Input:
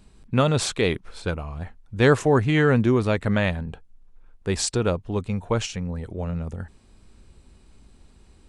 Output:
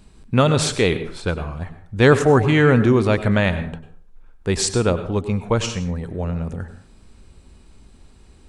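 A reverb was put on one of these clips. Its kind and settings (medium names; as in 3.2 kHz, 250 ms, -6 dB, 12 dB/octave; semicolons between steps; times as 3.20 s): plate-style reverb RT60 0.52 s, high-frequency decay 0.6×, pre-delay 85 ms, DRR 11 dB; trim +4 dB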